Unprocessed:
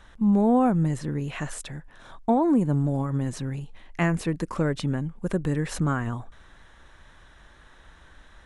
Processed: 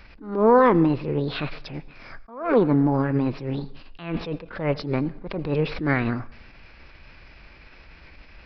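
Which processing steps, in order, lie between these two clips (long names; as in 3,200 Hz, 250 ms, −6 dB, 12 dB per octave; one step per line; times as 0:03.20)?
formants moved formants +6 semitones
downsampling to 11,025 Hz
on a send at −20 dB: convolution reverb RT60 0.75 s, pre-delay 75 ms
on the sum: level that may rise only so fast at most 110 dB per second
level +4.5 dB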